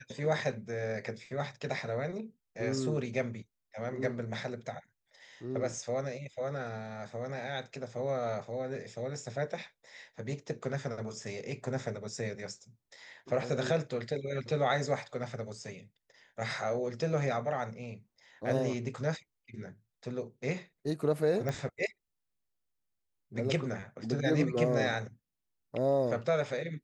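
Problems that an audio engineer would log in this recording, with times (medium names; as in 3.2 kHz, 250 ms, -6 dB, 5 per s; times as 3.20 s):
21.49 s: pop -22 dBFS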